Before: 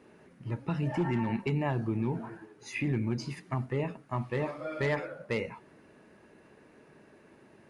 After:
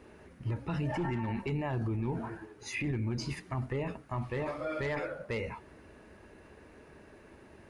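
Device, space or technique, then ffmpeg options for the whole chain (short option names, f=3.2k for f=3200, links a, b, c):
car stereo with a boomy subwoofer: -af "lowshelf=f=100:t=q:w=1.5:g=11,alimiter=level_in=5.5dB:limit=-24dB:level=0:latency=1:release=18,volume=-5.5dB,volume=3dB"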